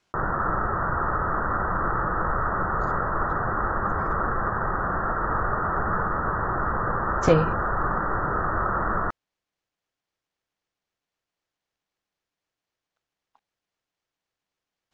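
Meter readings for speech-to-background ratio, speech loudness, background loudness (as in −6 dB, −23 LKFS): 2.0 dB, −24.0 LKFS, −26.0 LKFS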